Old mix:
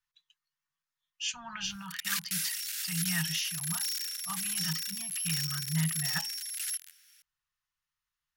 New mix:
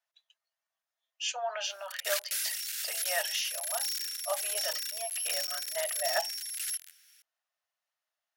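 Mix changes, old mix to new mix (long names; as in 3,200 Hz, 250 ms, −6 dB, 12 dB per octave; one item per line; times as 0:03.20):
speech: remove elliptic band-stop filter 150–980 Hz, stop band 40 dB
master: add Butterworth high-pass 590 Hz 48 dB per octave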